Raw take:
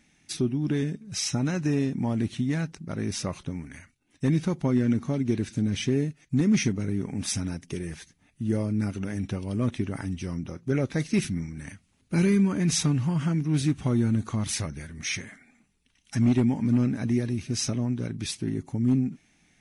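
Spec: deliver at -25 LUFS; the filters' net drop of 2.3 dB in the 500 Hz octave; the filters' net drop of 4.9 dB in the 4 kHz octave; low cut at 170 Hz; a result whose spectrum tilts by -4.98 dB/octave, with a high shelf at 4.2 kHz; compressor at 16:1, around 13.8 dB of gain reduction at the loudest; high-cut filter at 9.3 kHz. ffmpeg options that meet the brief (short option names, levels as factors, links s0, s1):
-af "highpass=170,lowpass=9300,equalizer=f=500:t=o:g=-3,equalizer=f=4000:t=o:g=-4,highshelf=f=4200:g=-3.5,acompressor=threshold=0.02:ratio=16,volume=5.31"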